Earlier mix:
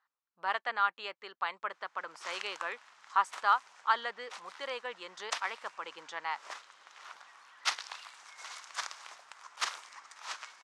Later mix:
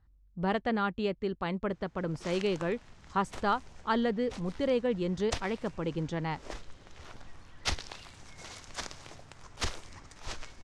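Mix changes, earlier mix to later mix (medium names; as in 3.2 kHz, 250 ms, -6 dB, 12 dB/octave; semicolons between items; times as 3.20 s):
speech: add peaking EQ 71 Hz +9.5 dB 2.9 oct; master: remove resonant high-pass 1.1 kHz, resonance Q 1.8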